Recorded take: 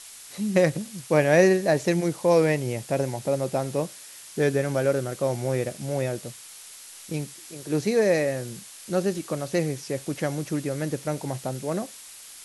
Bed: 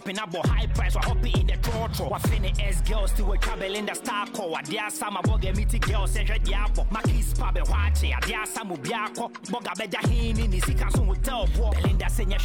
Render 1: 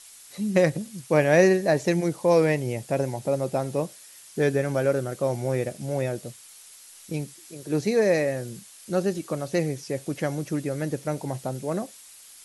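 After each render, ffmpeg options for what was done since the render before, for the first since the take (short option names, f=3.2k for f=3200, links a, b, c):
-af "afftdn=nr=6:nf=-45"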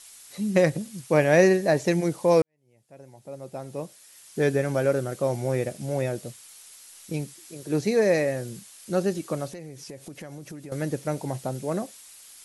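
-filter_complex "[0:a]asettb=1/sr,asplit=3[a][b][c];[a]atrim=end=9.494[d];[b]atrim=start=9.49:end=10.72,asetpts=PTS-STARTPTS,afade=t=in:d=0.004:c=qsin,afade=t=out:st=1.226:d=0.004:c=qsin,acompressor=threshold=-37dB:ratio=6:attack=3.2:release=140:knee=1:detection=peak[e];[c]atrim=start=10.716[f];[d][e]acrossfade=d=0.004:c1=hsin:c2=qsin[g];[g][f]acrossfade=d=0.004:c1=qsin:c2=hsin,asplit=2[h][i];[h]atrim=end=2.42,asetpts=PTS-STARTPTS,afade=t=out:st=2.416:d=0.004:c=hsin[j];[i]atrim=start=2.42,asetpts=PTS-STARTPTS,afade=t=in:d=2.05:c=qua[k];[j][k]concat=n=2:v=0:a=1"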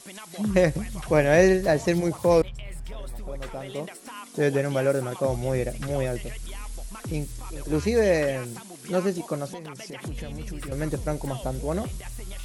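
-filter_complex "[1:a]volume=-12.5dB[a];[0:a][a]amix=inputs=2:normalize=0"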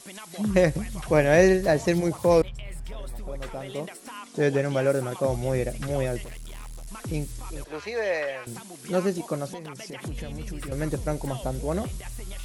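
-filter_complex "[0:a]asettb=1/sr,asplit=3[a][b][c];[a]atrim=end=4.174[d];[b]atrim=start=4.17:end=4.86,asetpts=PTS-STARTPTS,afade=t=in:d=0.004:c=qsin,afade=t=out:st=0.686:d=0.004:c=qsin,lowpass=8.4k[e];[c]atrim=start=4.856[f];[d][e]acrossfade=d=0.004:c1=hsin:c2=qsin[g];[g][f]acrossfade=d=0.004:c1=qsin:c2=hsin,asettb=1/sr,asplit=3[h][i][j];[h]atrim=end=6.244[k];[i]atrim=start=6.24:end=6.88,asetpts=PTS-STARTPTS,afade=t=in:d=0.004:c=qsin,afade=t=out:st=0.636:d=0.004:c=qsin,asoftclip=type=hard:threshold=-36.5dB[l];[j]atrim=start=6.876[m];[k][l]acrossfade=d=0.004:c1=hsin:c2=qsin[n];[n][m]acrossfade=d=0.004:c1=qsin:c2=hsin,asettb=1/sr,asplit=3[o][p][q];[o]atrim=end=7.644[r];[p]atrim=start=7.64:end=8.47,asetpts=PTS-STARTPTS,afade=t=in:d=0.004:c=qsin,afade=t=out:st=0.826:d=0.004:c=qsin,acrossover=split=540 4400:gain=0.0891 1 0.2[s][t][u];[s][t][u]amix=inputs=3:normalize=0[v];[q]atrim=start=8.466[w];[r][v]acrossfade=d=0.004:c1=hsin:c2=qsin[x];[x][w]acrossfade=d=0.004:c1=qsin:c2=hsin"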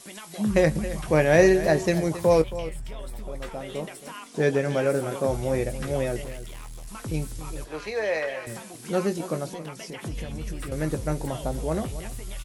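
-filter_complex "[0:a]asplit=2[a][b];[b]adelay=19,volume=-10.5dB[c];[a][c]amix=inputs=2:normalize=0,aecho=1:1:272:0.2"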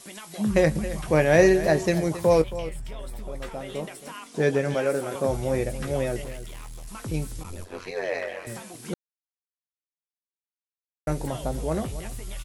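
-filter_complex "[0:a]asettb=1/sr,asplit=3[a][b][c];[a]atrim=end=4.744[d];[b]atrim=start=4.74:end=5.15,asetpts=PTS-STARTPTS,afade=t=in:d=0.004:c=qsin,afade=t=out:st=0.406:d=0.004:c=qsin,highpass=f=250:p=1[e];[c]atrim=start=5.146[f];[d][e]acrossfade=d=0.004:c1=hsin:c2=qsin[g];[g][f]acrossfade=d=0.004:c1=qsin:c2=hsin,asplit=3[h][i][j];[h]afade=t=out:st=7.43:d=0.02[k];[i]aeval=exprs='val(0)*sin(2*PI*45*n/s)':c=same,afade=t=in:st=7.43:d=0.02,afade=t=out:st=8.44:d=0.02[l];[j]afade=t=in:st=8.44:d=0.02[m];[k][l][m]amix=inputs=3:normalize=0,asplit=3[n][o][p];[n]atrim=end=8.94,asetpts=PTS-STARTPTS,afade=t=out:st=8.936:d=0.004:c=hsin[q];[o]atrim=start=8.94:end=11.07,asetpts=PTS-STARTPTS,volume=0[r];[p]atrim=start=11.07,asetpts=PTS-STARTPTS,afade=t=in:d=0.004:c=hsin[s];[q][r][s]concat=n=3:v=0:a=1"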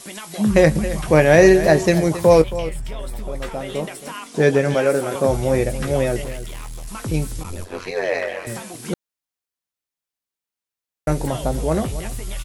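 -af "volume=7dB,alimiter=limit=-1dB:level=0:latency=1"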